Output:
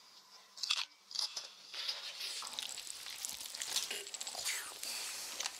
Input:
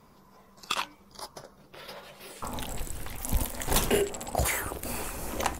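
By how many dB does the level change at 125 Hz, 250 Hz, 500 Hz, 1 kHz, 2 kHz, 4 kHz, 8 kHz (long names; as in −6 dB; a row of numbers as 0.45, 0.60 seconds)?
below −35 dB, −28.5 dB, −24.5 dB, −16.5 dB, −9.0 dB, 0.0 dB, −5.5 dB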